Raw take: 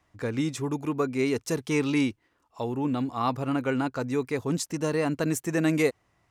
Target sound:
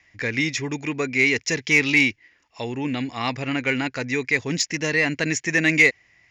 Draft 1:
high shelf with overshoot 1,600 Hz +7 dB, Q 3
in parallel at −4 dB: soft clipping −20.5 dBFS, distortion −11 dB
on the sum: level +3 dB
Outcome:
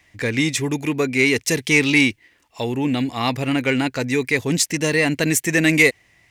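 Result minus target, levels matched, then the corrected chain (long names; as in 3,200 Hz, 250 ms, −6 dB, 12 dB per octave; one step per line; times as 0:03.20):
8,000 Hz band +3.5 dB
Chebyshev low-pass with heavy ripple 7,100 Hz, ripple 6 dB
high shelf with overshoot 1,600 Hz +7 dB, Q 3
in parallel at −4 dB: soft clipping −20.5 dBFS, distortion −12 dB
on the sum: level +3 dB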